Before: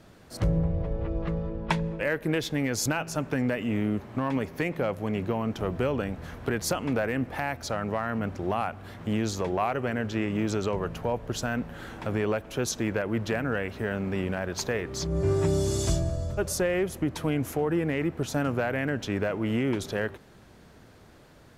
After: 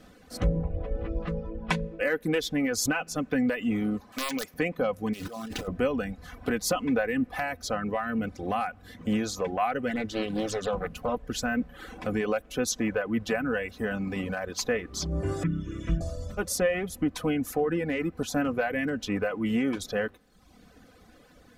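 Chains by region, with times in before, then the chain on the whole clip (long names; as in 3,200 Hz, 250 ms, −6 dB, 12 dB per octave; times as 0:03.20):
0:04.12–0:04.54: spectral tilt +3.5 dB per octave + wrap-around overflow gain 20 dB
0:05.13–0:05.68: compressor whose output falls as the input rises −35 dBFS + log-companded quantiser 4 bits + highs frequency-modulated by the lows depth 0.57 ms
0:09.89–0:11.23: high-shelf EQ 8,300 Hz +4.5 dB + highs frequency-modulated by the lows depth 0.69 ms
0:15.43–0:16.01: high-frequency loss of the air 270 metres + phaser with its sweep stopped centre 1,900 Hz, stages 4 + comb filter 6.1 ms, depth 76%
whole clip: reverb reduction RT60 0.96 s; notch filter 920 Hz, Q 8.1; comb filter 4 ms, depth 61%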